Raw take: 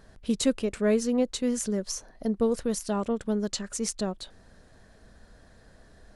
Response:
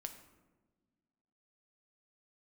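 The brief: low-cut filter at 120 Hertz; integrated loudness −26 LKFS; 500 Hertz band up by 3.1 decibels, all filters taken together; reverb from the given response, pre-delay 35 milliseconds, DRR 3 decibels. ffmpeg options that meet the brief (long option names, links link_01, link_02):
-filter_complex "[0:a]highpass=120,equalizer=frequency=500:width_type=o:gain=3.5,asplit=2[link_01][link_02];[1:a]atrim=start_sample=2205,adelay=35[link_03];[link_02][link_03]afir=irnorm=-1:irlink=0,volume=0.5dB[link_04];[link_01][link_04]amix=inputs=2:normalize=0,volume=-0.5dB"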